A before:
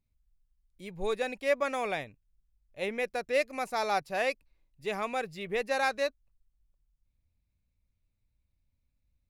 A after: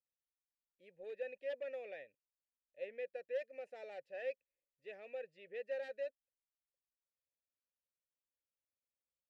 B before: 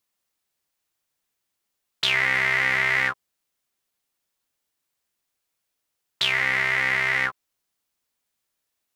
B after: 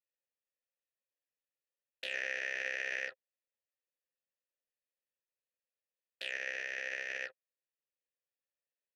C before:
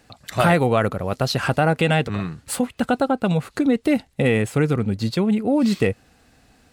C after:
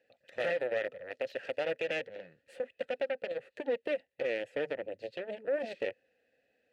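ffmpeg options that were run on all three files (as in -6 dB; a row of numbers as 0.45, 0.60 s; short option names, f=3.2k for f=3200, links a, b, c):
-filter_complex "[0:a]aeval=exprs='0.596*(cos(1*acos(clip(val(0)/0.596,-1,1)))-cos(1*PI/2))+0.266*(cos(2*acos(clip(val(0)/0.596,-1,1)))-cos(2*PI/2))+0.0422*(cos(4*acos(clip(val(0)/0.596,-1,1)))-cos(4*PI/2))+0.133*(cos(7*acos(clip(val(0)/0.596,-1,1)))-cos(7*PI/2))+0.0106*(cos(8*acos(clip(val(0)/0.596,-1,1)))-cos(8*PI/2))':c=same,asplit=3[a][b][c];[a]bandpass=f=530:t=q:w=8,volume=0dB[d];[b]bandpass=f=1.84k:t=q:w=8,volume=-6dB[e];[c]bandpass=f=2.48k:t=q:w=8,volume=-9dB[f];[d][e][f]amix=inputs=3:normalize=0,alimiter=limit=-23.5dB:level=0:latency=1:release=40"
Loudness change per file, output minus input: -14.0, -16.5, -15.0 LU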